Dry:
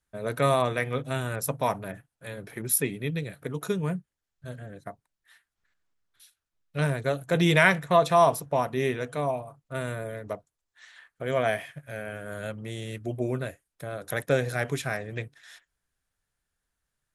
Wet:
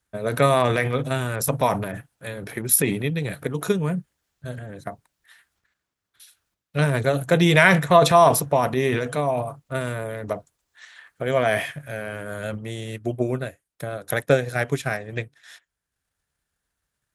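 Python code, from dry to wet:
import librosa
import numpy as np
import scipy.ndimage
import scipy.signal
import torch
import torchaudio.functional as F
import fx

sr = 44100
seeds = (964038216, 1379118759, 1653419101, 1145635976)

y = fx.transient(x, sr, attack_db=4, sustain_db=fx.steps((0.0, 9.0), (12.57, -5.0)))
y = scipy.signal.sosfilt(scipy.signal.butter(2, 43.0, 'highpass', fs=sr, output='sos'), y)
y = y * 10.0 ** (3.5 / 20.0)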